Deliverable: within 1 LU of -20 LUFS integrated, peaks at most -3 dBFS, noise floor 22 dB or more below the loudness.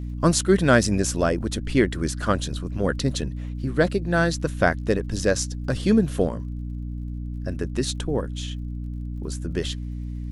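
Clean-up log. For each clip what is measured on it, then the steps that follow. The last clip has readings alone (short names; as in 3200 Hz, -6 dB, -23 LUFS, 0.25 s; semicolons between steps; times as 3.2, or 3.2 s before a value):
ticks 44/s; hum 60 Hz; harmonics up to 300 Hz; hum level -29 dBFS; loudness -24.5 LUFS; peak -3.5 dBFS; loudness target -20.0 LUFS
-> de-click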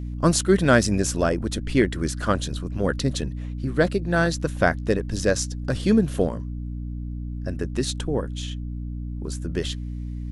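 ticks 0.097/s; hum 60 Hz; harmonics up to 300 Hz; hum level -29 dBFS
-> notches 60/120/180/240/300 Hz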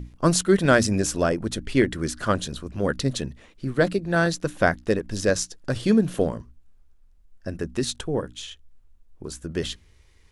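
hum none; loudness -24.0 LUFS; peak -5.0 dBFS; loudness target -20.0 LUFS
-> gain +4 dB; limiter -3 dBFS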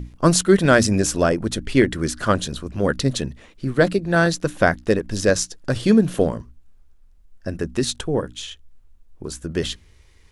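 loudness -20.5 LUFS; peak -3.0 dBFS; noise floor -51 dBFS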